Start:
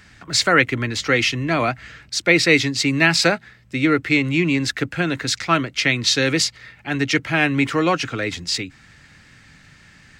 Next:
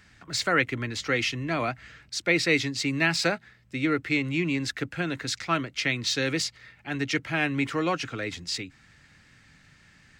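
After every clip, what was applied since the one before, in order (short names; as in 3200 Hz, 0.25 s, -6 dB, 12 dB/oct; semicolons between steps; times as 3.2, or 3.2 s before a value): de-esser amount 35%; gain -8 dB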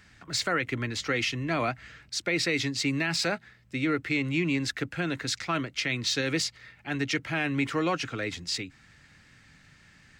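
limiter -17.5 dBFS, peak gain reduction 7.5 dB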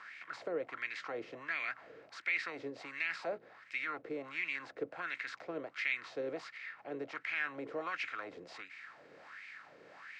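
per-bin compression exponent 0.6; wah 1.4 Hz 450–2300 Hz, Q 4.3; mismatched tape noise reduction encoder only; gain -3.5 dB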